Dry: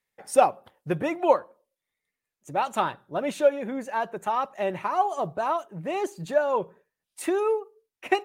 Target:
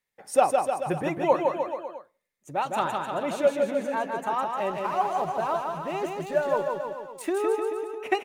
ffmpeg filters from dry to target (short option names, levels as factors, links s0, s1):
-filter_complex "[0:a]asettb=1/sr,asplit=3[s0][s1][s2];[s0]atrim=end=4.574[s3];[s1]atrim=start=4.57:end=7.33,asetpts=PTS-STARTPTS,afade=t=in:d=0.004:c=qsin,afade=t=out:st=2.756:d=0.004:c=qsin,aeval=exprs='sgn(val(0))*max(abs(val(0))-0.00447,0)':c=same[s4];[s2]atrim=start=7.326[s5];[s3][s4]acrossfade=d=0.004:c1=hsin:c2=qsin[s6];[s6][s5]acrossfade=d=0.004:c1=qsin:c2=hsin,aecho=1:1:160|304|433.6|550.2|655.2:0.631|0.398|0.251|0.158|0.1,volume=0.794"